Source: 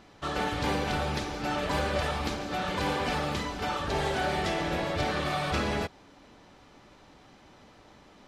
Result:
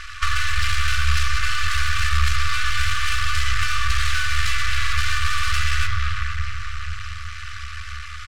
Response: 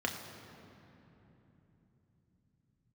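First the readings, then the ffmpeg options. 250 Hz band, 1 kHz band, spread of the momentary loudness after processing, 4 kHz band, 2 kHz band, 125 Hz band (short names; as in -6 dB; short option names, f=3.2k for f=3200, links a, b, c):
under -20 dB, +3.5 dB, 12 LU, +10.5 dB, +12.0 dB, +10.0 dB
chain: -filter_complex "[0:a]aecho=1:1:3.4:0.68,asplit=2[a][b];[1:a]atrim=start_sample=2205[c];[b][c]afir=irnorm=-1:irlink=0,volume=-6.5dB[d];[a][d]amix=inputs=2:normalize=0,aeval=exprs='max(val(0),0)':c=same,apsyclip=25dB,lowpass=10k,asoftclip=type=hard:threshold=-2dB,afftfilt=real='re*(1-between(b*sr/4096,100,1100))':imag='im*(1-between(b*sr/4096,100,1100))':win_size=4096:overlap=0.75,acrossover=split=240[e][f];[f]acompressor=threshold=-18dB:ratio=10[g];[e][g]amix=inputs=2:normalize=0,volume=-3.5dB"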